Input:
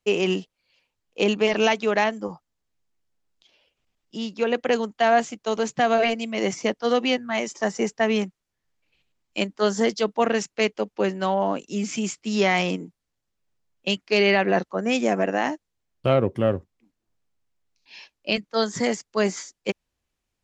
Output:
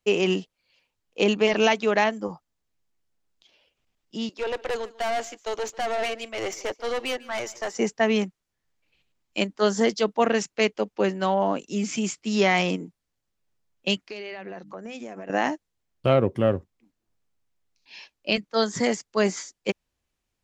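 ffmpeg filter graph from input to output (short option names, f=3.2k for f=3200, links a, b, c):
-filter_complex "[0:a]asettb=1/sr,asplit=3[a][b][c];[a]atrim=end=4.294[d];[b]atrim=start=4.29:end=7.75,asetpts=PTS-STARTPTS,afade=t=in:d=0.004:c=qsin,afade=t=out:st=3.456:d=0.004:c=qsin,highpass=f=340:w=0.5412,highpass=f=340:w=1.3066,aeval=exprs='(tanh(15.8*val(0)+0.35)-tanh(0.35))/15.8':c=same,aecho=1:1:147:0.0944,atrim=end_sample=152586[e];[c]atrim=start=7.746[f];[d][e]acrossfade=d=0.004:c1=hsin:c2=qsin[g];[g][f]acrossfade=d=0.004:c1=qsin:c2=hsin,asettb=1/sr,asplit=3[h][i][j];[h]atrim=end=14.054[k];[i]atrim=start=14.05:end=15.3,asetpts=PTS-STARTPTS,afade=t=in:d=0.004:c=qsin,afade=t=out:st=1.246:d=0.004:c=qsin,bandreject=f=50:t=h:w=6,bandreject=f=100:t=h:w=6,bandreject=f=150:t=h:w=6,bandreject=f=200:t=h:w=6,bandreject=f=250:t=h:w=6,bandreject=f=300:t=h:w=6,acompressor=threshold=-34dB:ratio=8:attack=3.2:release=140:knee=1:detection=peak[l];[j]atrim=start=15.296[m];[k][l]acrossfade=d=0.004:c1=hsin:c2=qsin[n];[n][m]acrossfade=d=0.004:c1=qsin:c2=hsin"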